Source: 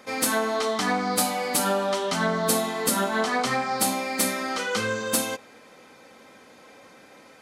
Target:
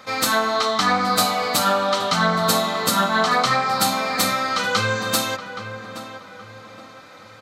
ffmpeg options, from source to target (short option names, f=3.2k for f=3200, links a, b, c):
-filter_complex "[0:a]equalizer=f=100:t=o:w=0.33:g=10,equalizer=f=160:t=o:w=0.33:g=4,equalizer=f=250:t=o:w=0.33:g=-6,equalizer=f=400:t=o:w=0.33:g=-8,equalizer=f=1.25k:t=o:w=0.33:g=8,equalizer=f=4k:t=o:w=0.33:g=8,equalizer=f=10k:t=o:w=0.33:g=-9,asplit=2[a][b];[b]adelay=822,lowpass=f=2k:p=1,volume=-10dB,asplit=2[c][d];[d]adelay=822,lowpass=f=2k:p=1,volume=0.4,asplit=2[e][f];[f]adelay=822,lowpass=f=2k:p=1,volume=0.4,asplit=2[g][h];[h]adelay=822,lowpass=f=2k:p=1,volume=0.4[i];[a][c][e][g][i]amix=inputs=5:normalize=0,volume=4dB"